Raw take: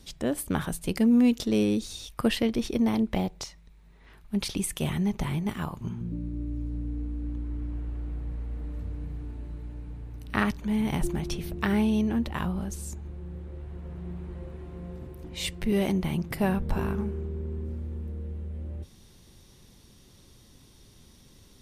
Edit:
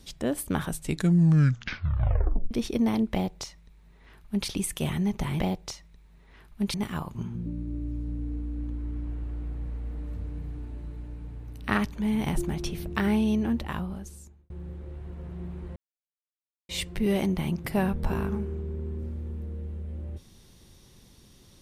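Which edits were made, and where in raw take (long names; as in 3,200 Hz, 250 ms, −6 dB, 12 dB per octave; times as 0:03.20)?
0:00.67: tape stop 1.84 s
0:03.13–0:04.47: duplicate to 0:05.40
0:12.21–0:13.16: fade out
0:14.42–0:15.35: silence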